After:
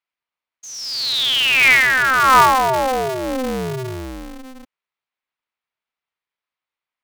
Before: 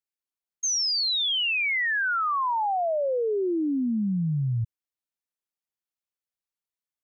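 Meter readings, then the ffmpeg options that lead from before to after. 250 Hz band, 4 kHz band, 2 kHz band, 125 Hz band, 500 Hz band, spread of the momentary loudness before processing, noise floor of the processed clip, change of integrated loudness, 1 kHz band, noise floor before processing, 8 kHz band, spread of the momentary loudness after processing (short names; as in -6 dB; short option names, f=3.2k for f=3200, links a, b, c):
-0.5 dB, +6.5 dB, +11.5 dB, -2.5 dB, +5.0 dB, 5 LU, under -85 dBFS, +10.0 dB, +11.5 dB, under -85 dBFS, n/a, 18 LU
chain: -af "highpass=380,equalizer=f=490:t=q:w=4:g=-5,equalizer=f=1.1k:t=q:w=4:g=9,equalizer=f=2.2k:t=q:w=4:g=7,lowpass=f=4k:w=0.5412,lowpass=f=4k:w=1.3066,aeval=exprs='val(0)*sgn(sin(2*PI*130*n/s))':c=same,volume=7.5dB"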